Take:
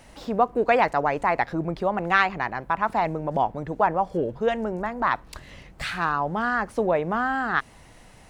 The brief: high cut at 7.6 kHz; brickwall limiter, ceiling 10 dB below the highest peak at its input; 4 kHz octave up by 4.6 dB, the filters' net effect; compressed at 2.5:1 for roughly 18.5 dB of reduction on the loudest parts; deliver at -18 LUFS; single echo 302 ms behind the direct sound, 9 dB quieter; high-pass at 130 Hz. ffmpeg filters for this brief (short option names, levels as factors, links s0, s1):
-af "highpass=130,lowpass=7600,equalizer=f=4000:t=o:g=6,acompressor=threshold=0.00631:ratio=2.5,alimiter=level_in=2.66:limit=0.0631:level=0:latency=1,volume=0.376,aecho=1:1:302:0.355,volume=16.8"